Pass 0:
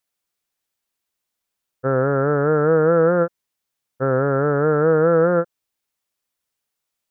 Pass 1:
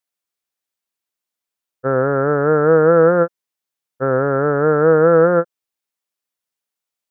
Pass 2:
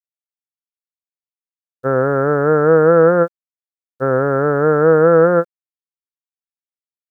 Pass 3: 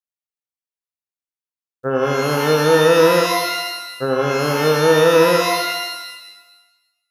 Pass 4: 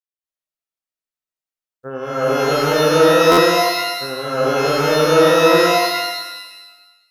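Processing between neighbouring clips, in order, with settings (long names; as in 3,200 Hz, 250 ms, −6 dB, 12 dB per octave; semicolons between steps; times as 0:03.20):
low-shelf EQ 110 Hz −9.5 dB; expander for the loud parts 1.5 to 1, over −34 dBFS; level +5 dB
bit reduction 10 bits; level +1 dB
reverb with rising layers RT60 1.1 s, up +12 semitones, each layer −2 dB, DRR 5 dB; level −4 dB
convolution reverb RT60 0.75 s, pre-delay 205 ms, DRR −10 dB; buffer that repeats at 0:03.31, samples 512, times 5; level −9 dB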